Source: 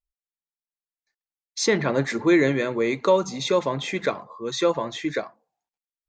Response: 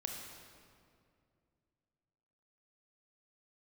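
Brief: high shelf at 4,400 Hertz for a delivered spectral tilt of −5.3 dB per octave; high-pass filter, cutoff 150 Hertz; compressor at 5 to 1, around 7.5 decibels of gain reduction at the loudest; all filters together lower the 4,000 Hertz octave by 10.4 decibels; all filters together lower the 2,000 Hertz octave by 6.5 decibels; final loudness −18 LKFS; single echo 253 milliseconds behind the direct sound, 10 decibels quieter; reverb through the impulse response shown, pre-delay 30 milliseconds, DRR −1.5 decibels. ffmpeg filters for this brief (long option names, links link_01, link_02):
-filter_complex "[0:a]highpass=150,equalizer=frequency=2000:width_type=o:gain=-4.5,equalizer=frequency=4000:width_type=o:gain=-7,highshelf=frequency=4400:gain=-8,acompressor=threshold=-23dB:ratio=5,aecho=1:1:253:0.316,asplit=2[link_01][link_02];[1:a]atrim=start_sample=2205,adelay=30[link_03];[link_02][link_03]afir=irnorm=-1:irlink=0,volume=1.5dB[link_04];[link_01][link_04]amix=inputs=2:normalize=0,volume=7.5dB"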